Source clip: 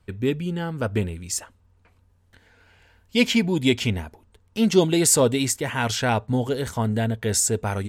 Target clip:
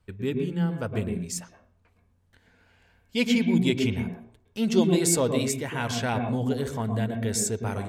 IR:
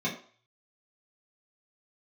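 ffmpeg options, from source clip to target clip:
-filter_complex "[0:a]asplit=2[s0][s1];[1:a]atrim=start_sample=2205,lowpass=2500,adelay=110[s2];[s1][s2]afir=irnorm=-1:irlink=0,volume=0.224[s3];[s0][s3]amix=inputs=2:normalize=0,volume=0.501"

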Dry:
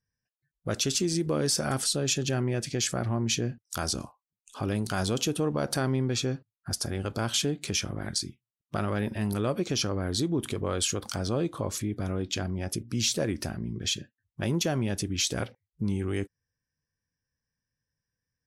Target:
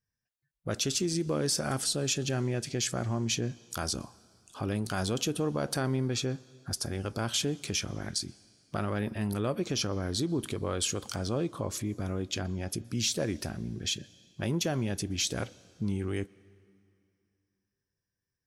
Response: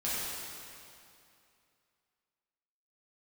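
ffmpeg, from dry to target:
-filter_complex "[0:a]asplit=2[s0][s1];[1:a]atrim=start_sample=2205,adelay=120[s2];[s1][s2]afir=irnorm=-1:irlink=0,volume=0.0299[s3];[s0][s3]amix=inputs=2:normalize=0,volume=0.75"

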